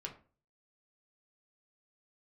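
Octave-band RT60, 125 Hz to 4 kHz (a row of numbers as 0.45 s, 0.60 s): 0.55 s, 0.45 s, 0.40 s, 0.35 s, 0.30 s, 0.25 s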